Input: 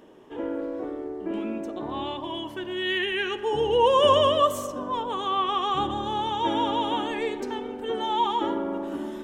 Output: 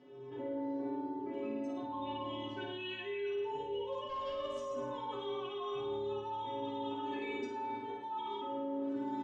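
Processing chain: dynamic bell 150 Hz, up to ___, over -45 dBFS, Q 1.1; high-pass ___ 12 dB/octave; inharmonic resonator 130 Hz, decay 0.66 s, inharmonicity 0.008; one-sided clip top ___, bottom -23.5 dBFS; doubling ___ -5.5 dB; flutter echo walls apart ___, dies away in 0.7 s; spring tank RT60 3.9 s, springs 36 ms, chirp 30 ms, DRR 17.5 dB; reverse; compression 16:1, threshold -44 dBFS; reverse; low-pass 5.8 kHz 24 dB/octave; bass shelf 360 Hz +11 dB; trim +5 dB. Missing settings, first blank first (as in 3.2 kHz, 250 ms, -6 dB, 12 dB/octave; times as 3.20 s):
-5 dB, 99 Hz, -28 dBFS, 17 ms, 9.3 m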